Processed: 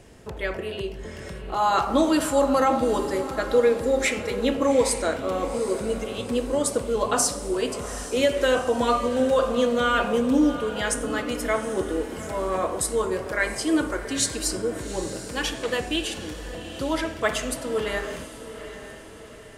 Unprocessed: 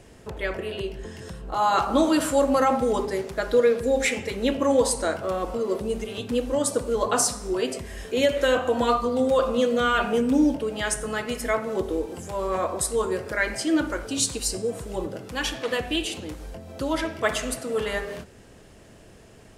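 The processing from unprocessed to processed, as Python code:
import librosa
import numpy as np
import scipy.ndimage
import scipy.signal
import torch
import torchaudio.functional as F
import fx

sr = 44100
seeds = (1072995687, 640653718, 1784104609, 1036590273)

y = fx.echo_diffused(x, sr, ms=791, feedback_pct=48, wet_db=-12.0)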